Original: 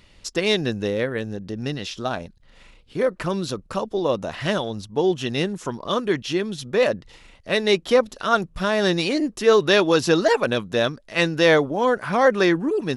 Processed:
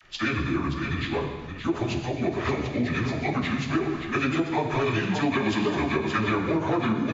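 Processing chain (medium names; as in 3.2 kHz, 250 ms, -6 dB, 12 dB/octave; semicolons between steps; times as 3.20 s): frequency-domain pitch shifter -7.5 st; bass shelf 440 Hz -4.5 dB; in parallel at -0.5 dB: peak limiter -17 dBFS, peak gain reduction 9 dB; on the sum: phase dispersion lows, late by 56 ms, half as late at 720 Hz; plain phase-vocoder stretch 0.55×; on a send: multi-tap echo 120/574 ms -17/-8.5 dB; on the sum: gated-style reverb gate 430 ms falling, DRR 4.5 dB; compression, threshold -21 dBFS, peak gain reduction 7 dB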